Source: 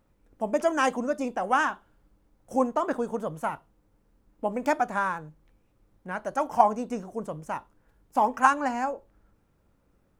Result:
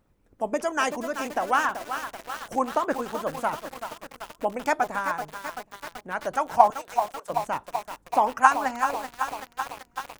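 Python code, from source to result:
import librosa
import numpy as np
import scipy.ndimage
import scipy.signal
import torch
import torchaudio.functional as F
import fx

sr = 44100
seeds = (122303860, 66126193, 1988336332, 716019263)

p1 = fx.bessel_highpass(x, sr, hz=830.0, order=8, at=(6.7, 7.3))
p2 = fx.hpss(p1, sr, part='percussive', gain_db=9)
p3 = p2 + fx.echo_feedback(p2, sr, ms=386, feedback_pct=57, wet_db=-24.0, dry=0)
p4 = fx.echo_crushed(p3, sr, ms=383, feedback_pct=80, bits=5, wet_db=-8.0)
y = F.gain(torch.from_numpy(p4), -5.0).numpy()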